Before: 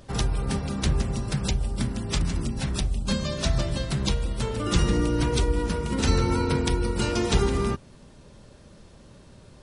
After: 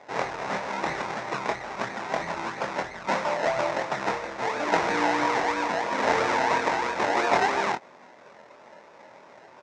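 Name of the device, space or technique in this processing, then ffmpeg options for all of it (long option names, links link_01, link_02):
circuit-bent sampling toy: -filter_complex "[0:a]acrusher=samples=30:mix=1:aa=0.000001:lfo=1:lforange=18:lforate=3,highpass=510,equalizer=frequency=630:width_type=q:width=4:gain=4,equalizer=frequency=910:width_type=q:width=4:gain=6,equalizer=frequency=2000:width_type=q:width=4:gain=4,equalizer=frequency=3100:width_type=q:width=4:gain=-8,equalizer=frequency=4500:width_type=q:width=4:gain=-6,lowpass=frequency=5700:width=0.5412,lowpass=frequency=5700:width=1.3066,asplit=2[link_01][link_02];[link_02]adelay=24,volume=-6dB[link_03];[link_01][link_03]amix=inputs=2:normalize=0,volume=4.5dB"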